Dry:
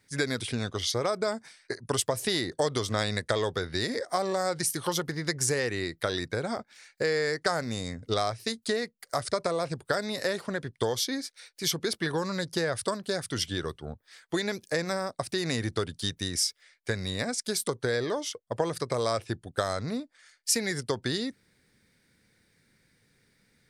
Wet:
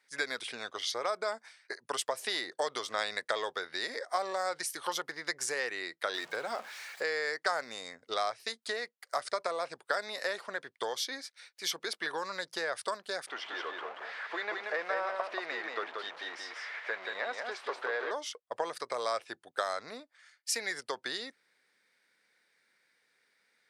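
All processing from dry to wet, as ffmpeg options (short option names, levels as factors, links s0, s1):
-filter_complex "[0:a]asettb=1/sr,asplit=3[s0][s1][s2];[s0]atrim=end=6.144[s3];[s1]atrim=start=6.14:end=7.03,asetpts=PTS-STARTPTS,afade=t=in:d=0.004:c=qsin,afade=t=out:st=0.886:d=0.004:c=qsin,aeval=exprs='val(0)+0.5*0.0126*sgn(val(0))':c=same,bandreject=f=60:t=h:w=6,bandreject=f=120:t=h:w=6,bandreject=f=180:t=h:w=6[s4];[s2]atrim=start=7.026[s5];[s3][s4]acrossfade=d=0.004:c1=hsin:c2=qsin[s6];[s6][s5]acrossfade=d=0.004:c1=qsin:c2=hsin,asettb=1/sr,asplit=3[s7][s8][s9];[s7]atrim=end=13.274[s10];[s8]atrim=start=13.27:end=18.11,asetpts=PTS-STARTPTS,afade=t=in:d=0.004:c=qsin,afade=t=out:st=4.836:d=0.004:c=qsin,aeval=exprs='val(0)+0.5*0.0299*sgn(val(0))':c=same,highpass=420,lowpass=2200,aecho=1:1:181:0.631,atrim=end_sample=213444[s11];[s9]atrim=start=18.106[s12];[s10][s11]acrossfade=d=0.004:c1=hsin:c2=qsin[s13];[s13][s12]acrossfade=d=0.004:c1=qsin:c2=hsin,highpass=720,highshelf=f=4900:g=-10.5"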